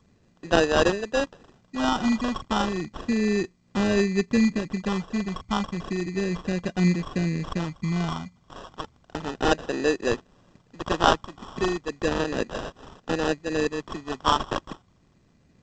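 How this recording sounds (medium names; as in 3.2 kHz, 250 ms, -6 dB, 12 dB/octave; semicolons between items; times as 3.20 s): a buzz of ramps at a fixed pitch in blocks of 8 samples; phasing stages 4, 0.33 Hz, lowest notch 500–1200 Hz; aliases and images of a low sample rate 2.2 kHz, jitter 0%; G.722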